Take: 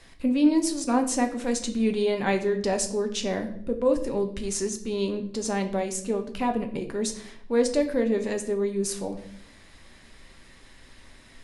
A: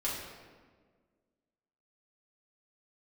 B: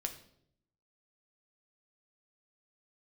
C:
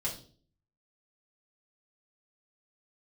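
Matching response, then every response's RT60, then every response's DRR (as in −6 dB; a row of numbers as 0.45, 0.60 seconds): B; 1.6, 0.70, 0.45 seconds; −7.0, 5.0, −6.5 decibels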